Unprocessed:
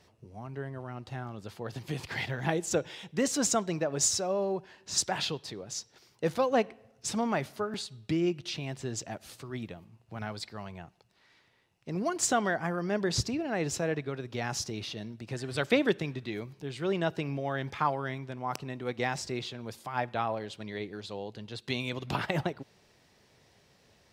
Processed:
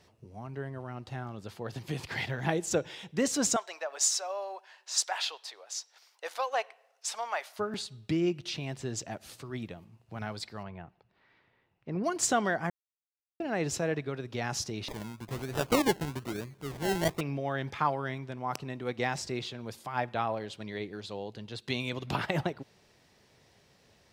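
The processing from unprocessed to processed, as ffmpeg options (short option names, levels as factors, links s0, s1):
-filter_complex "[0:a]asettb=1/sr,asplit=3[s0][s1][s2];[s0]atrim=end=3.564[s3];[s1]atrim=start=3.56:end=7.59,asetpts=PTS-STARTPTS,afade=t=in:d=0.004:c=qsin,afade=t=out:st=4.026:d=0.004:c=qsin,highpass=f=660:w=0.5412,highpass=f=660:w=1.3066[s4];[s2]atrim=start=7.586[s5];[s3][s4]acrossfade=d=0.004:c1=hsin:c2=qsin[s6];[s6][s5]acrossfade=d=0.004:c1=qsin:c2=hsin,asettb=1/sr,asplit=3[s7][s8][s9];[s7]atrim=end=10.634[s10];[s8]atrim=start=10.63:end=12.04,asetpts=PTS-STARTPTS,afade=t=in:d=0.004:c=qsin,afade=t=out:st=1.406:d=0.004:c=qsin,lowpass=2400[s11];[s9]atrim=start=12.036[s12];[s10][s11]acrossfade=d=0.004:c1=hsin:c2=qsin[s13];[s13][s12]acrossfade=d=0.004:c1=qsin:c2=hsin,asettb=1/sr,asplit=3[s14][s15][s16];[s14]atrim=end=14.884[s17];[s15]atrim=start=14.88:end=17.21,asetpts=PTS-STARTPTS,afade=t=in:d=0.004:c=qsin,afade=t=out:st=2.326:d=0.004:c=qsin,acrusher=samples=29:mix=1:aa=0.000001:lfo=1:lforange=17.4:lforate=1.1[s18];[s16]atrim=start=17.206[s19];[s17][s18]acrossfade=d=0.004:c1=hsin:c2=qsin[s20];[s20][s19]acrossfade=d=0.004:c1=qsin:c2=hsin,asplit=3[s21][s22][s23];[s21]atrim=end=12.7,asetpts=PTS-STARTPTS,afade=t=out:st=12.696:d=0.004:c=hsin[s24];[s22]atrim=start=12.7:end=13.4,asetpts=PTS-STARTPTS,volume=0[s25];[s23]atrim=start=13.4,asetpts=PTS-STARTPTS,afade=t=in:d=0.004:c=hsin[s26];[s24][s25][s26]concat=n=3:v=0:a=1"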